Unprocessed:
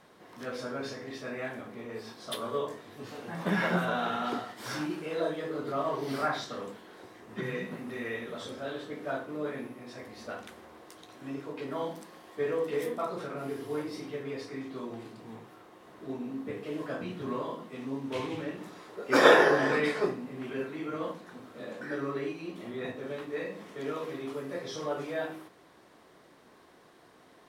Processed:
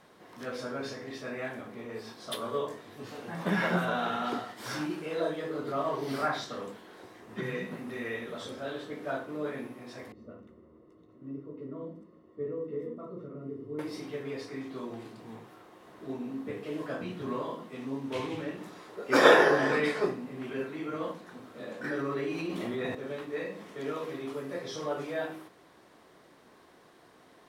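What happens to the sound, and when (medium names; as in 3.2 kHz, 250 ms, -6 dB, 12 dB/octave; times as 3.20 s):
10.12–13.79 s: boxcar filter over 55 samples
21.84–22.95 s: level flattener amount 70%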